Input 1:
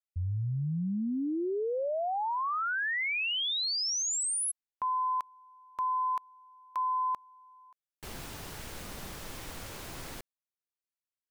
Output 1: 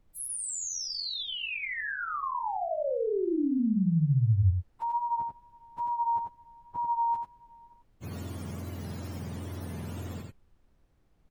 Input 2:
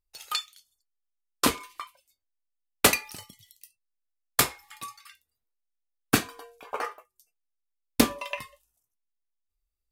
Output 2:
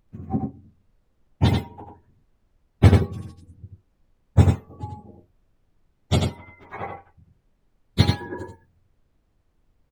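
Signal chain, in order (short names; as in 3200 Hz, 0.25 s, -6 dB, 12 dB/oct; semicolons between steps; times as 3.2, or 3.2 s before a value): spectrum mirrored in octaves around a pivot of 980 Hz; wow and flutter 21 cents; added noise brown -65 dBFS; echo 89 ms -4 dB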